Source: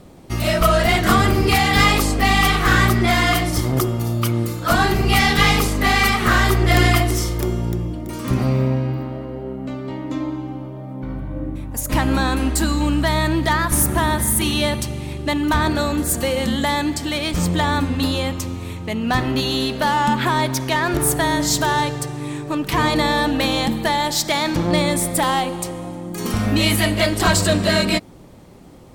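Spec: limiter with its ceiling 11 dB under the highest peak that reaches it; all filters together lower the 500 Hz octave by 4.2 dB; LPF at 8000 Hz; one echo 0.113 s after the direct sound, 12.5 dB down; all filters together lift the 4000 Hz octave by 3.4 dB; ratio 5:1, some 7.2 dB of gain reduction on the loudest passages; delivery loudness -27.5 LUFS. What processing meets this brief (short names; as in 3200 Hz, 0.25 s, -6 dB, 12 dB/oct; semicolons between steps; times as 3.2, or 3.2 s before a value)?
LPF 8000 Hz; bell 500 Hz -6 dB; bell 4000 Hz +4.5 dB; compressor 5:1, threshold -19 dBFS; limiter -19.5 dBFS; echo 0.113 s -12.5 dB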